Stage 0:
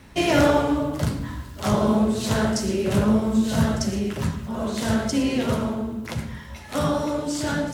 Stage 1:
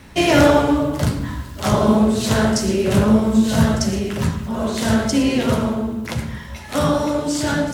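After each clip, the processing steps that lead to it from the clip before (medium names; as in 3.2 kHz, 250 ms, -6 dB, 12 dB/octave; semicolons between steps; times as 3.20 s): de-hum 51.62 Hz, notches 28; trim +5.5 dB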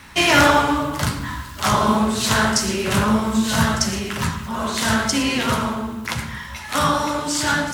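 resonant low shelf 770 Hz -8 dB, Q 1.5; trim +4 dB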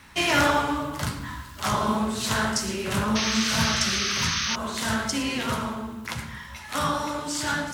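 painted sound noise, 3.15–4.56 s, 1.1–6.5 kHz -20 dBFS; trim -7 dB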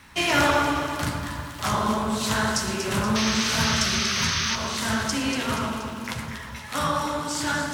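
echo whose repeats swap between lows and highs 119 ms, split 1.8 kHz, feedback 75%, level -6 dB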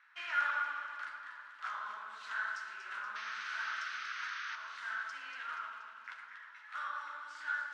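ladder band-pass 1.6 kHz, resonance 65%; trim -5.5 dB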